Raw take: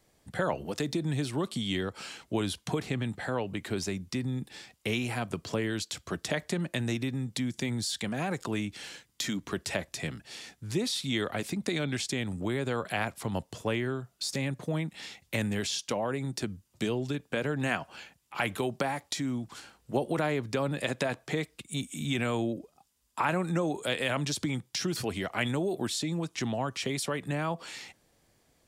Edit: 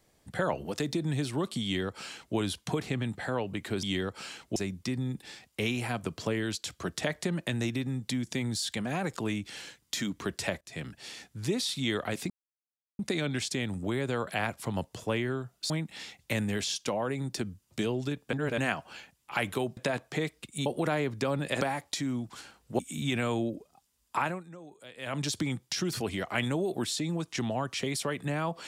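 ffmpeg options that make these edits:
-filter_complex "[0:a]asplit=14[s0][s1][s2][s3][s4][s5][s6][s7][s8][s9][s10][s11][s12][s13];[s0]atrim=end=3.832[s14];[s1]atrim=start=1.628:end=2.362[s15];[s2]atrim=start=3.828:end=9.88,asetpts=PTS-STARTPTS,afade=t=out:st=6.048:d=0.004:c=hsin:silence=0.0707946[s16];[s3]atrim=start=9.88:end=11.57,asetpts=PTS-STARTPTS,afade=t=in:d=0.28:silence=0.0707946,afade=t=out:st=1.686:d=0.004:c=hsin,apad=pad_dur=0.69[s17];[s4]atrim=start=11.57:end=14.282,asetpts=PTS-STARTPTS,afade=t=in:d=0.004:c=hsin[s18];[s5]atrim=start=14.728:end=17.362[s19];[s6]atrim=start=17.358:end=17.612,asetpts=PTS-STARTPTS,areverse[s20];[s7]atrim=start=17.608:end=18.802[s21];[s8]atrim=start=20.928:end=21.822[s22];[s9]atrim=start=19.978:end=20.932[s23];[s10]atrim=start=18.798:end=19.982[s24];[s11]atrim=start=21.818:end=23.47,asetpts=PTS-STARTPTS,afade=t=out:st=1.392:d=0.26:silence=0.11885[s25];[s12]atrim=start=23.47:end=24,asetpts=PTS-STARTPTS,volume=0.119[s26];[s13]atrim=start=24,asetpts=PTS-STARTPTS,afade=t=in:d=0.26:silence=0.11885[s27];[s14][s15]acrossfade=d=0.004:c1=hsin:c2=hsin[s28];[s16][s17][s18]concat=n=3:v=0:a=1[s29];[s28][s29]acrossfade=d=0.004:c1=hsin:c2=hsin[s30];[s30][s19]acrossfade=d=0.004:c1=hsin:c2=hsin[s31];[s31][s20]acrossfade=d=0.004:c1=hsin:c2=hsin[s32];[s32][s21]acrossfade=d=0.004:c1=hsin:c2=hsin[s33];[s33][s22]acrossfade=d=0.004:c1=hsin:c2=hsin[s34];[s34][s23]acrossfade=d=0.004:c1=hsin:c2=hsin[s35];[s35][s24]acrossfade=d=0.004:c1=hsin:c2=hsin[s36];[s25][s26][s27]concat=n=3:v=0:a=1[s37];[s36][s37]acrossfade=d=0.004:c1=hsin:c2=hsin"

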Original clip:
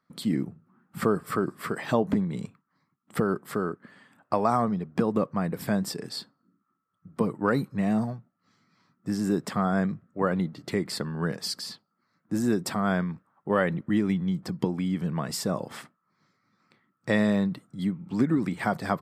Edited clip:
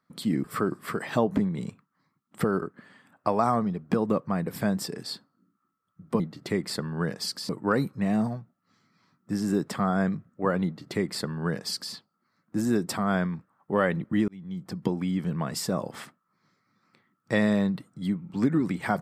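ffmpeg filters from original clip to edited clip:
-filter_complex "[0:a]asplit=6[s0][s1][s2][s3][s4][s5];[s0]atrim=end=0.442[s6];[s1]atrim=start=1.198:end=3.382[s7];[s2]atrim=start=3.678:end=7.262[s8];[s3]atrim=start=10.418:end=11.712[s9];[s4]atrim=start=7.258:end=14.05,asetpts=PTS-STARTPTS,afade=t=out:st=6.788:d=0.004:c=hsin[s10];[s5]atrim=start=14.05,asetpts=PTS-STARTPTS,afade=t=in:d=0.62[s11];[s6][s7]acrossfade=d=0.004:c1=hsin:c2=hsin[s12];[s12][s8]acrossfade=d=0.004:c1=hsin:c2=hsin[s13];[s13][s9]acrossfade=d=0.004:c1=hsin:c2=hsin[s14];[s10][s11]concat=n=2:v=0:a=1[s15];[s14][s15]acrossfade=d=0.004:c1=hsin:c2=hsin"

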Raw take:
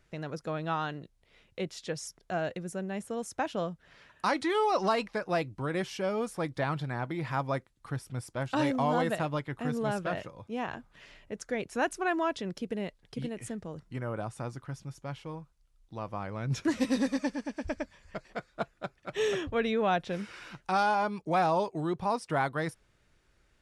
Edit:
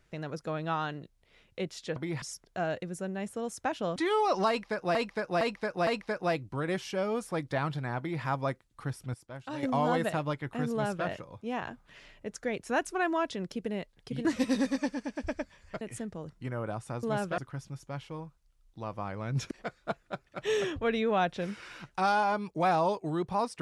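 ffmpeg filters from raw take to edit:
-filter_complex "[0:a]asplit=14[s0][s1][s2][s3][s4][s5][s6][s7][s8][s9][s10][s11][s12][s13];[s0]atrim=end=1.962[s14];[s1]atrim=start=7.038:end=7.302[s15];[s2]atrim=start=1.958:end=3.702[s16];[s3]atrim=start=4.398:end=5.392[s17];[s4]atrim=start=4.928:end=5.392[s18];[s5]atrim=start=4.928:end=5.392[s19];[s6]atrim=start=4.928:end=8.202[s20];[s7]atrim=start=8.198:end=8.692,asetpts=PTS-STARTPTS,volume=0.316[s21];[s8]atrim=start=8.688:end=13.312[s22];[s9]atrim=start=16.658:end=18.222[s23];[s10]atrim=start=13.308:end=14.532[s24];[s11]atrim=start=9.768:end=10.122[s25];[s12]atrim=start=14.528:end=16.662[s26];[s13]atrim=start=18.218[s27];[s14][s15]acrossfade=d=0.004:c1=hsin:c2=hsin[s28];[s28][s16]acrossfade=d=0.004:c1=hsin:c2=hsin[s29];[s29][s17]acrossfade=d=0.004:c1=hsin:c2=hsin[s30];[s30][s18]acrossfade=d=0.004:c1=hsin:c2=hsin[s31];[s31][s19]acrossfade=d=0.004:c1=hsin:c2=hsin[s32];[s32][s20]acrossfade=d=0.004:c1=hsin:c2=hsin[s33];[s33][s21]acrossfade=d=0.004:c1=hsin:c2=hsin[s34];[s34][s22]acrossfade=d=0.004:c1=hsin:c2=hsin[s35];[s35][s23]acrossfade=d=0.004:c1=hsin:c2=hsin[s36];[s36][s24]acrossfade=d=0.004:c1=hsin:c2=hsin[s37];[s37][s25]acrossfade=d=0.004:c1=hsin:c2=hsin[s38];[s38][s26]acrossfade=d=0.004:c1=hsin:c2=hsin[s39];[s39][s27]acrossfade=d=0.004:c1=hsin:c2=hsin"

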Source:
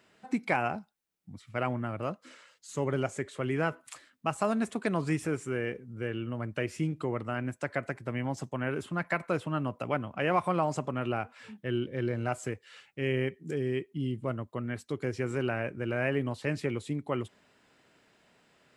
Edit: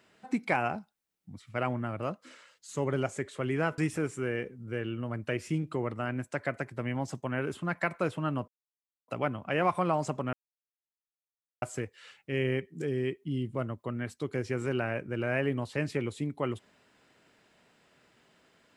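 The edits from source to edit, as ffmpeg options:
-filter_complex "[0:a]asplit=5[s0][s1][s2][s3][s4];[s0]atrim=end=3.782[s5];[s1]atrim=start=5.068:end=9.77,asetpts=PTS-STARTPTS,afade=t=out:st=4.698:d=0.004:c=hsin,apad=pad_dur=0.6[s6];[s2]atrim=start=9.77:end=11.02,asetpts=PTS-STARTPTS,afade=t=in:d=0.004:c=hsin,afade=t=out:st=1.246:d=0.004:c=hsin[s7];[s3]atrim=start=11.02:end=12.31,asetpts=PTS-STARTPTS,volume=0[s8];[s4]atrim=start=12.31,asetpts=PTS-STARTPTS,afade=t=in:d=0.004:c=hsin[s9];[s6][s7][s8][s9]concat=n=4:v=0:a=1[s10];[s5][s10]acrossfade=d=0.004:c1=hsin:c2=hsin"

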